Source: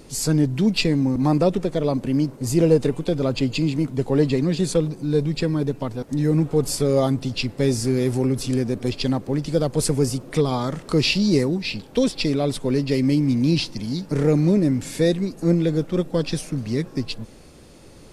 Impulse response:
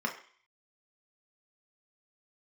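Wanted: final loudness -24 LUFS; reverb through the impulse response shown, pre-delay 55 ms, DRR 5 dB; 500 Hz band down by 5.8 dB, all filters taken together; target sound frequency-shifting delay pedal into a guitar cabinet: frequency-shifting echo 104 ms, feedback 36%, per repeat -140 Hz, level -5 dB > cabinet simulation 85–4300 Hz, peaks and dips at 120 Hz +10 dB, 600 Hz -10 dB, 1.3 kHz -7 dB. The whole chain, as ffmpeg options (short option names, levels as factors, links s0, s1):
-filter_complex "[0:a]equalizer=f=500:t=o:g=-4.5,asplit=2[s0][s1];[1:a]atrim=start_sample=2205,adelay=55[s2];[s1][s2]afir=irnorm=-1:irlink=0,volume=0.266[s3];[s0][s3]amix=inputs=2:normalize=0,asplit=5[s4][s5][s6][s7][s8];[s5]adelay=104,afreqshift=-140,volume=0.562[s9];[s6]adelay=208,afreqshift=-280,volume=0.202[s10];[s7]adelay=312,afreqshift=-420,volume=0.0733[s11];[s8]adelay=416,afreqshift=-560,volume=0.0263[s12];[s4][s9][s10][s11][s12]amix=inputs=5:normalize=0,highpass=85,equalizer=f=120:t=q:w=4:g=10,equalizer=f=600:t=q:w=4:g=-10,equalizer=f=1300:t=q:w=4:g=-7,lowpass=f=4300:w=0.5412,lowpass=f=4300:w=1.3066,volume=0.631"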